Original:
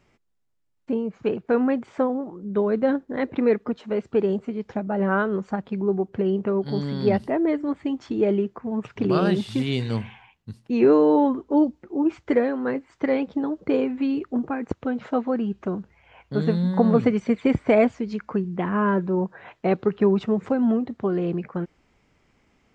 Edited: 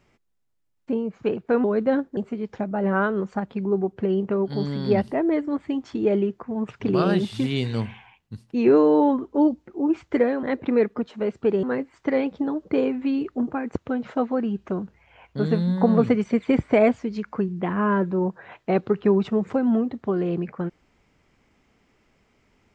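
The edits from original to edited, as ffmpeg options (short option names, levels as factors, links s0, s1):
-filter_complex "[0:a]asplit=5[s0][s1][s2][s3][s4];[s0]atrim=end=1.642[s5];[s1]atrim=start=2.598:end=3.132[s6];[s2]atrim=start=4.328:end=12.592[s7];[s3]atrim=start=3.128:end=4.332[s8];[s4]atrim=start=12.588[s9];[s5][s6]acrossfade=d=0.004:c1=hsin:c2=hsin[s10];[s10][s7]acrossfade=d=0.004:c1=hsin:c2=hsin[s11];[s11][s8]acrossfade=d=0.004:c1=hsin:c2=hsin[s12];[s12][s9]acrossfade=d=0.004:c1=hsin:c2=hsin"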